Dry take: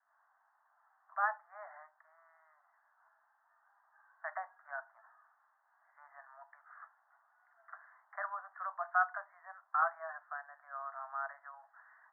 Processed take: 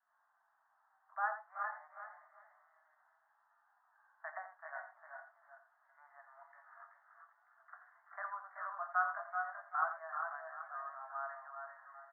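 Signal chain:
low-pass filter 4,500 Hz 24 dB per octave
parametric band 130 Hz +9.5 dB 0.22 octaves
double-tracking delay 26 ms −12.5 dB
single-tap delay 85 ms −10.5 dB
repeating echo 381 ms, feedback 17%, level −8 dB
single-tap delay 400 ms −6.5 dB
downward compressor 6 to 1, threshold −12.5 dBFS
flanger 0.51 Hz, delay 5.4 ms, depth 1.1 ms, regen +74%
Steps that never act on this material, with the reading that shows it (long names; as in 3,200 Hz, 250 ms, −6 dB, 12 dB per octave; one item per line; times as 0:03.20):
low-pass filter 4,500 Hz: nothing at its input above 2,000 Hz
parametric band 130 Hz: nothing at its input below 540 Hz
downward compressor, threshold −12.5 dBFS: peak of its input −16.5 dBFS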